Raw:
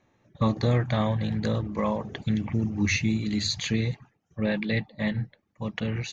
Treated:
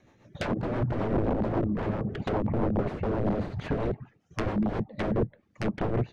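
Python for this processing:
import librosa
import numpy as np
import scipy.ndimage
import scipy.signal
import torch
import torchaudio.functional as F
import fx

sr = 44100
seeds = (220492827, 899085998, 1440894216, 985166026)

y = (np.mod(10.0 ** (25.0 / 20.0) * x + 1.0, 2.0) - 1.0) / 10.0 ** (25.0 / 20.0)
y = fx.rotary(y, sr, hz=7.5)
y = fx.env_lowpass_down(y, sr, base_hz=730.0, full_db=-31.5)
y = y * librosa.db_to_amplitude(8.0)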